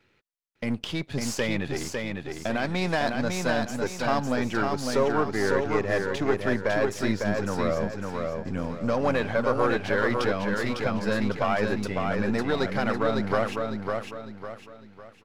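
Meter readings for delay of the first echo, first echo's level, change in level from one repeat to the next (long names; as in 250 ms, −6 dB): 553 ms, −4.0 dB, −8.5 dB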